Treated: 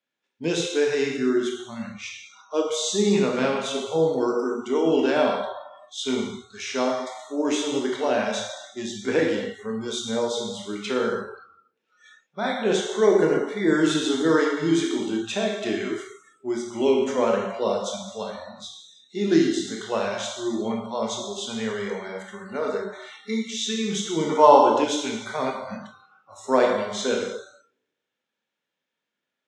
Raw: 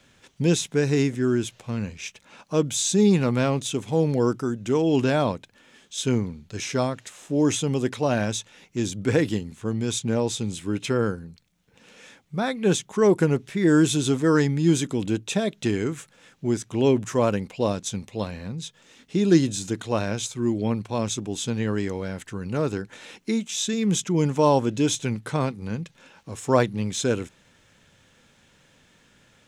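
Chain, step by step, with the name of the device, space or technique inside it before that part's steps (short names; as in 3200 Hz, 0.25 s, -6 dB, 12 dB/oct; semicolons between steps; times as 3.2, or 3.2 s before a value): supermarket ceiling speaker (BPF 310–5400 Hz; reverb RT60 1.3 s, pre-delay 15 ms, DRR -1 dB); spectral noise reduction 26 dB; 24.29–24.84 bell 1100 Hz +8.5 dB 1.8 oct; gain -1 dB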